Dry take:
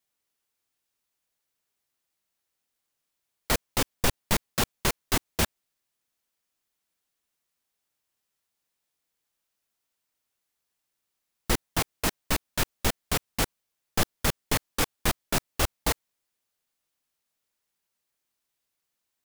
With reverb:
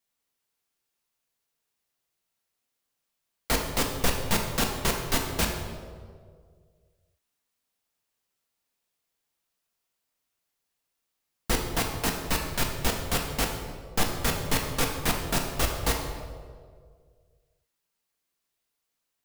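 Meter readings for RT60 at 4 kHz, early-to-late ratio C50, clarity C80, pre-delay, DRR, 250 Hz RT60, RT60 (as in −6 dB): 1.1 s, 4.5 dB, 6.0 dB, 4 ms, 1.5 dB, 1.9 s, 1.9 s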